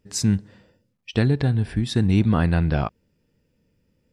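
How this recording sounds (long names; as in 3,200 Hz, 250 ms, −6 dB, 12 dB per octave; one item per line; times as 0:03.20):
background noise floor −70 dBFS
spectral slope −7.0 dB per octave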